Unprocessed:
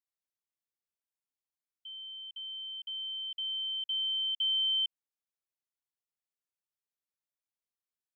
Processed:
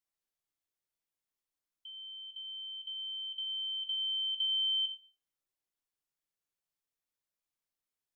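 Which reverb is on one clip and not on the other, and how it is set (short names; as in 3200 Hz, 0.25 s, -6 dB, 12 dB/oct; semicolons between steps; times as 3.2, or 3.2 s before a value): shoebox room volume 44 m³, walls mixed, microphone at 0.44 m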